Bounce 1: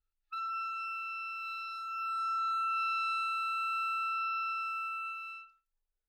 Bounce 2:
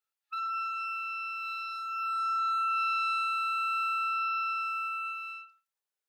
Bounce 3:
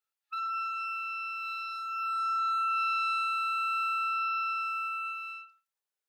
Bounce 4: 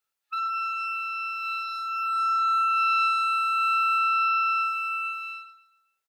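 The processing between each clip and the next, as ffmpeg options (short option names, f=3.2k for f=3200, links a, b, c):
-af "highpass=530,volume=3.5dB"
-af anull
-af "aecho=1:1:135|270|405|540:0.178|0.0711|0.0285|0.0114,volume=5.5dB"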